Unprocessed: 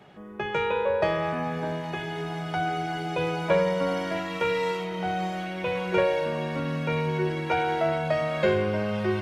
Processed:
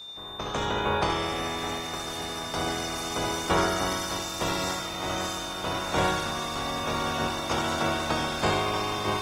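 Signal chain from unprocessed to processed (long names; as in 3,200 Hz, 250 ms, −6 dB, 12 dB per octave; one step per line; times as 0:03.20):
ceiling on every frequency bin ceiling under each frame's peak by 29 dB
flat-topped bell 2,600 Hz −9.5 dB
on a send: feedback echo with a high-pass in the loop 70 ms, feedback 42%, high-pass 380 Hz, level −5 dB
on the sum: steady tone 3,600 Hz −38 dBFS
Opus 16 kbit/s 48,000 Hz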